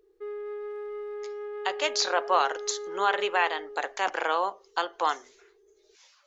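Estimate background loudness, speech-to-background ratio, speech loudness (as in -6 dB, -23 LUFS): -37.5 LUFS, 9.5 dB, -28.0 LUFS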